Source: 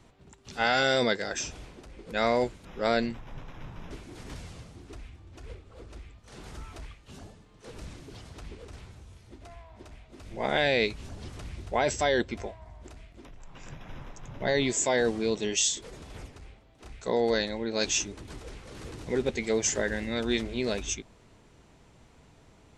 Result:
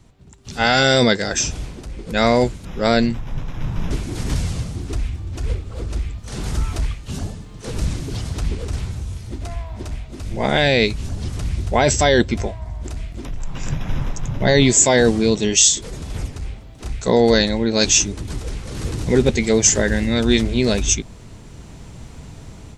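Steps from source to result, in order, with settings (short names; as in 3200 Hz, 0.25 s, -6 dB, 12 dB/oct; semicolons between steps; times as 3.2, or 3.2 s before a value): tone controls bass +9 dB, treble +6 dB; AGC gain up to 13 dB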